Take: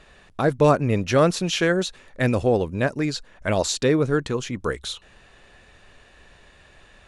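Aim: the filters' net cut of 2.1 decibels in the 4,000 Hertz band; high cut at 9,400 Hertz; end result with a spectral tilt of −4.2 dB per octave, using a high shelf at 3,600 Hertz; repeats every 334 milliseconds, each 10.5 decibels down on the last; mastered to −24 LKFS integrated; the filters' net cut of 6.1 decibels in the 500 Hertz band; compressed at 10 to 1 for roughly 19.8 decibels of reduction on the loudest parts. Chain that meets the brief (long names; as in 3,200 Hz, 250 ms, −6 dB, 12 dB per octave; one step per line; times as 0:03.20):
low-pass filter 9,400 Hz
parametric band 500 Hz −7.5 dB
high-shelf EQ 3,600 Hz +5.5 dB
parametric band 4,000 Hz −6 dB
downward compressor 10 to 1, threshold −36 dBFS
repeating echo 334 ms, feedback 30%, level −10.5 dB
level +16.5 dB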